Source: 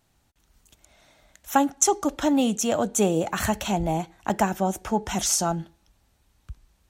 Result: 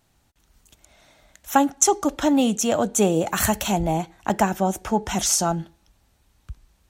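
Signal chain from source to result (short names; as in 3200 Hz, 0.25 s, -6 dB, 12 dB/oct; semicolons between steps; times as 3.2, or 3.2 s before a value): 3.26–3.79 high shelf 6500 Hz -> 10000 Hz +10.5 dB; gain +2.5 dB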